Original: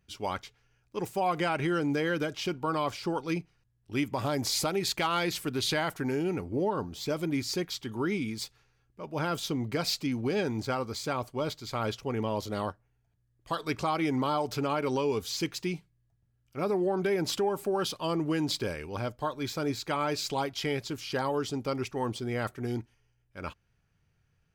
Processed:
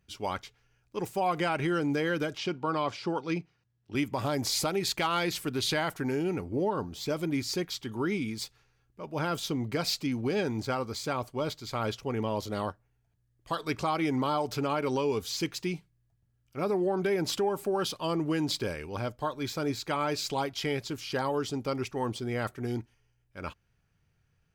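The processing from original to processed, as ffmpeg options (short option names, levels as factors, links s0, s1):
-filter_complex "[0:a]asettb=1/sr,asplit=3[s0][s1][s2];[s0]atrim=end=2.384[s3];[s1]atrim=start=2.38:end=3.95,asetpts=PTS-STARTPTS,afade=t=in:d=0.004:c=qsin,afade=t=out:st=1.566:d=0.004:c=qsin,highpass=100,lowpass=5900[s4];[s2]atrim=start=3.946[s5];[s3][s4]acrossfade=d=0.004:c1=hsin:c2=qsin[s6];[s6][s5]acrossfade=d=0.004:c1=qsin:c2=hsin"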